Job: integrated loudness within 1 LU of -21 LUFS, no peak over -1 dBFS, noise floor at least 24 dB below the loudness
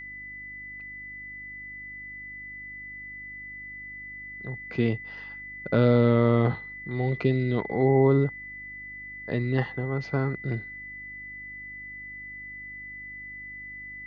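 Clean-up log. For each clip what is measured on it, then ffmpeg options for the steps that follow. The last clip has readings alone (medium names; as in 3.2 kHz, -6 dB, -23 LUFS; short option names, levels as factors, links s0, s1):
hum 50 Hz; highest harmonic 300 Hz; hum level -51 dBFS; steady tone 2 kHz; tone level -38 dBFS; loudness -29.0 LUFS; peak level -10.0 dBFS; loudness target -21.0 LUFS
-> -af "bandreject=f=50:t=h:w=4,bandreject=f=100:t=h:w=4,bandreject=f=150:t=h:w=4,bandreject=f=200:t=h:w=4,bandreject=f=250:t=h:w=4,bandreject=f=300:t=h:w=4"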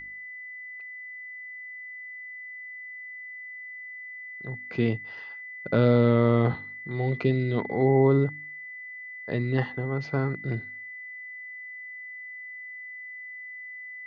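hum not found; steady tone 2 kHz; tone level -38 dBFS
-> -af "bandreject=f=2000:w=30"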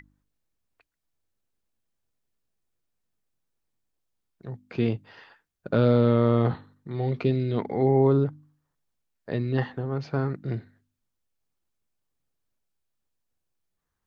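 steady tone not found; loudness -25.0 LUFS; peak level -10.5 dBFS; loudness target -21.0 LUFS
-> -af "volume=1.58"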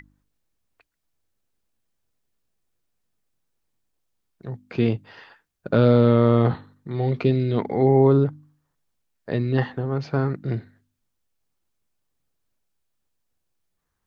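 loudness -21.5 LUFS; peak level -6.5 dBFS; noise floor -77 dBFS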